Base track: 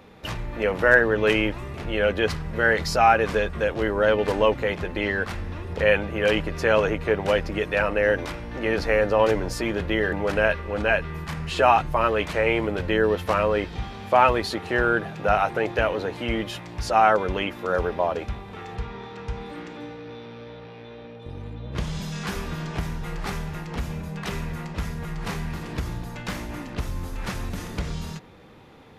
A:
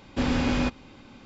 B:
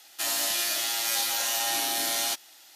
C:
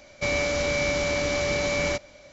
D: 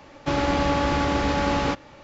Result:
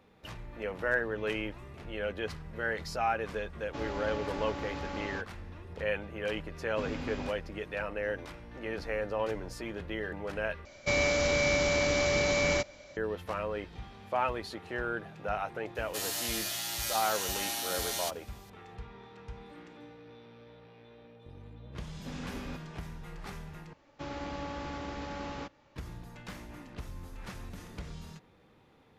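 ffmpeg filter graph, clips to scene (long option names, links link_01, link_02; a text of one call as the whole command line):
ffmpeg -i bed.wav -i cue0.wav -i cue1.wav -i cue2.wav -i cue3.wav -filter_complex "[4:a]asplit=2[link_01][link_02];[1:a]asplit=2[link_03][link_04];[0:a]volume=-13dB,asplit=3[link_05][link_06][link_07];[link_05]atrim=end=10.654[link_08];[3:a]atrim=end=2.32,asetpts=PTS-STARTPTS,volume=-2dB[link_09];[link_06]atrim=start=12.966:end=23.734[link_10];[link_02]atrim=end=2.03,asetpts=PTS-STARTPTS,volume=-16.5dB[link_11];[link_07]atrim=start=25.756[link_12];[link_01]atrim=end=2.03,asetpts=PTS-STARTPTS,volume=-16dB,afade=type=in:duration=0.004:curve=hsin,afade=type=out:start_time=2.026:duration=0.004:curve=hsin,adelay=3470[link_13];[link_03]atrim=end=1.25,asetpts=PTS-STARTPTS,volume=-14dB,afade=type=in:duration=0.004:curve=hsin,afade=type=out:start_time=1.246:duration=0.004:curve=hsin,adelay=6600[link_14];[2:a]atrim=end=2.75,asetpts=PTS-STARTPTS,volume=-7.5dB,afade=type=in:duration=0.004:curve=hsin,afade=type=out:start_time=2.746:duration=0.004:curve=hsin,adelay=15750[link_15];[link_04]atrim=end=1.25,asetpts=PTS-STARTPTS,volume=-17.5dB,afade=type=in:duration=0.004:curve=hsin,afade=type=out:start_time=1.246:duration=0.004:curve=hsin,adelay=21880[link_16];[link_08][link_09]acrossfade=duration=0.004:curve1=hsin:curve2=hsin[link_17];[link_17][link_10]acrossfade=duration=0.004:curve1=hsin:curve2=hsin[link_18];[link_18][link_11]acrossfade=duration=0.004:curve1=hsin:curve2=hsin[link_19];[link_19][link_12]acrossfade=duration=0.004:curve1=hsin:curve2=hsin[link_20];[link_20][link_13][link_14][link_15][link_16]amix=inputs=5:normalize=0" out.wav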